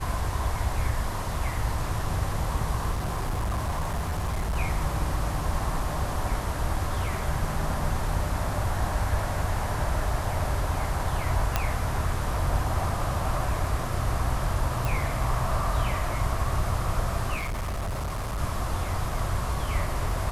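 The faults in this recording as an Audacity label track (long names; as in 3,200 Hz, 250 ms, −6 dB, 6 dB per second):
2.910000	4.570000	clipping −24 dBFS
11.560000	11.560000	click −8 dBFS
14.850000	14.850000	click
17.360000	18.390000	clipping −27 dBFS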